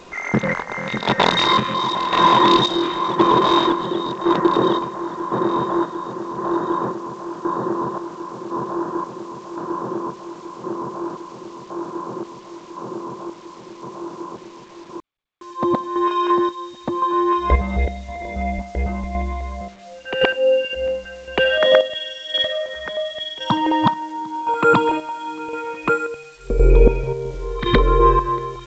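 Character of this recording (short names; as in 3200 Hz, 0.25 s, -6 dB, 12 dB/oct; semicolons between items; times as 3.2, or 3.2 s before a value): chopped level 0.94 Hz, depth 60%, duty 50%; a quantiser's noise floor 8-bit, dither none; G.722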